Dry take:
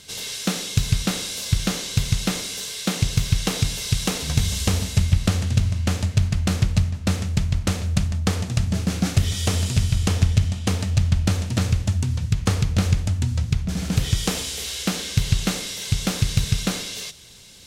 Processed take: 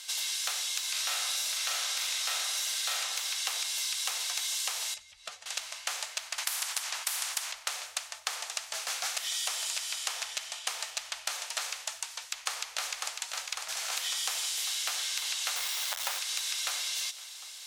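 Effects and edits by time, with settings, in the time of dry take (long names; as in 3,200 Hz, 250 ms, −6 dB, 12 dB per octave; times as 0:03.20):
0:00.91–0:03.00: thrown reverb, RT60 1 s, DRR −4 dB
0:04.94–0:05.46: expanding power law on the bin magnitudes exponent 1.6
0:06.38–0:07.52: every bin compressed towards the loudest bin 10 to 1
0:12.37–0:13.42: delay throw 550 ms, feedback 75%, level −8 dB
0:15.56–0:16.19: each half-wave held at its own peak
whole clip: inverse Chebyshev high-pass filter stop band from 290 Hz, stop band 50 dB; parametric band 13,000 Hz +3 dB 2.5 octaves; downward compressor 5 to 1, threshold −30 dBFS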